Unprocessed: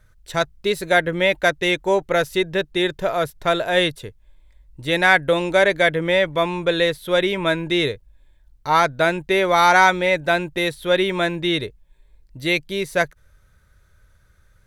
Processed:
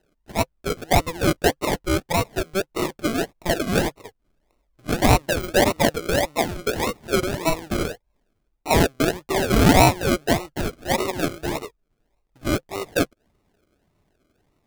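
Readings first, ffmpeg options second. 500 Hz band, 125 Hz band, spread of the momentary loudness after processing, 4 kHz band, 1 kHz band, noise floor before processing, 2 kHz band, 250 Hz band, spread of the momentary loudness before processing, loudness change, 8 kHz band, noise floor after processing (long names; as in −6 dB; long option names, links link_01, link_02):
−4.0 dB, +5.0 dB, 11 LU, −4.5 dB, −3.5 dB, −57 dBFS, −8.0 dB, +1.5 dB, 9 LU, −3.0 dB, +7.0 dB, −72 dBFS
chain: -filter_complex "[0:a]acrossover=split=430 4900:gain=0.1 1 0.178[link_01][link_02][link_03];[link_01][link_02][link_03]amix=inputs=3:normalize=0,acrusher=samples=38:mix=1:aa=0.000001:lfo=1:lforange=22.8:lforate=1.7,bandreject=frequency=520:width=12"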